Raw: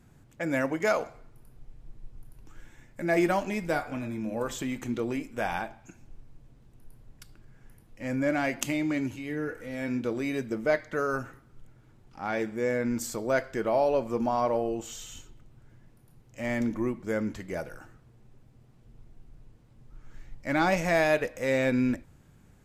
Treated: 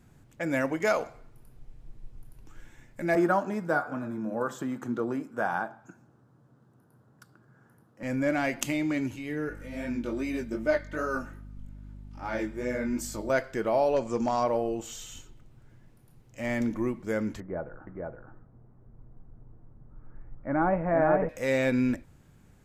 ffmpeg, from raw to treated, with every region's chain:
-filter_complex "[0:a]asettb=1/sr,asplit=3[s0][s1][s2];[s0]atrim=end=3.154[s3];[s1]atrim=start=3.15:end=8.03,asetpts=PTS-STARTPTS,afade=t=in:d=0.004:c=qsin,afade=t=out:st=4.876:d=0.004:c=qsin,highpass=f=120:w=0.5412,highpass=f=120:w=1.3066,highshelf=f=1800:t=q:w=3:g=-7.5[s4];[s2]atrim=start=8.026[s5];[s3][s4]acrossfade=d=0.004:c1=hsin:c2=qsin[s6];[s6][s5]acrossfade=d=0.004:c1=qsin:c2=hsin,asettb=1/sr,asplit=3[s7][s8][s9];[s7]atrim=end=9.494[s10];[s8]atrim=start=9.49:end=13.3,asetpts=PTS-STARTPTS,afade=t=in:d=0.004:c=qsin,afade=t=out:st=3.806:d=0.004:c=qsin,aecho=1:1:3.3:0.54,atrim=end_sample=168021,flanger=delay=16.5:depth=5.6:speed=2.5,aeval=exprs='val(0)+0.00708*(sin(2*PI*50*n/s)+sin(2*PI*2*50*n/s)/2+sin(2*PI*3*50*n/s)/3+sin(2*PI*4*50*n/s)/4+sin(2*PI*5*50*n/s)/5)':c=same[s11];[s9]atrim=start=13.296[s12];[s10][s11]acrossfade=d=0.004:c1=hsin:c2=qsin[s13];[s13][s12]acrossfade=d=0.004:c1=qsin:c2=hsin,asettb=1/sr,asplit=3[s14][s15][s16];[s14]atrim=end=13.964[s17];[s15]atrim=start=13.96:end=14.44,asetpts=PTS-STARTPTS,afade=t=in:d=0.004:c=qsin,afade=t=out:st=0.476:d=0.004:c=qsin,asoftclip=type=hard:threshold=0.112,lowpass=f=7000:t=q:w=3.4[s18];[s16]atrim=start=14.436[s19];[s17][s18]acrossfade=d=0.004:c1=hsin:c2=qsin[s20];[s20][s19]acrossfade=d=0.004:c1=qsin:c2=hsin,asettb=1/sr,asplit=3[s21][s22][s23];[s21]atrim=end=17.404[s24];[s22]atrim=start=17.4:end=21.29,asetpts=PTS-STARTPTS,afade=t=in:d=0.004:c=qsin,afade=t=out:st=3.886:d=0.004:c=qsin,lowpass=f=1400:w=0.5412,lowpass=f=1400:w=1.3066,aecho=1:1:468:0.708,atrim=end_sample=171549[s25];[s23]atrim=start=21.286[s26];[s24][s25]acrossfade=d=0.004:c1=hsin:c2=qsin[s27];[s27][s26]acrossfade=d=0.004:c1=qsin:c2=hsin"

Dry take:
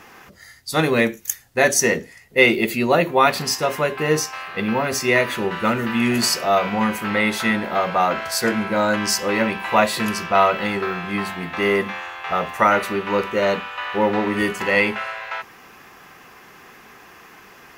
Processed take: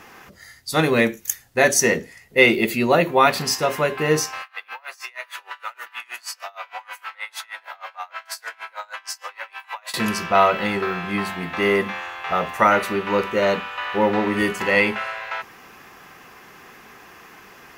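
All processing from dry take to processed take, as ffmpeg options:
-filter_complex "[0:a]asettb=1/sr,asplit=3[s0][s1][s2];[s0]atrim=end=4.424[s3];[s1]atrim=start=4.42:end=9.94,asetpts=PTS-STARTPTS,afade=t=in:d=0.004:c=qsin,afade=t=out:st=5.516:d=0.004:c=qsin,highpass=f=820:w=0.5412,highpass=f=820:w=1.3066,acompressor=threshold=0.0562:ratio=4:attack=3.2:release=140:knee=1:detection=peak,aeval=exprs='val(0)*pow(10,-26*(0.5-0.5*cos(2*PI*6.4*n/s))/20)':c=same[s4];[s2]atrim=start=9.936[s5];[s3][s4]acrossfade=d=0.004:c1=hsin:c2=qsin[s6];[s6][s5]acrossfade=d=0.004:c1=qsin:c2=hsin"

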